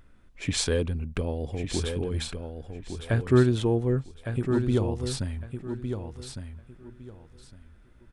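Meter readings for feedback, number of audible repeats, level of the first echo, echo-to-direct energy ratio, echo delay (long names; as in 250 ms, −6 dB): 22%, 3, −7.5 dB, −7.5 dB, 1,158 ms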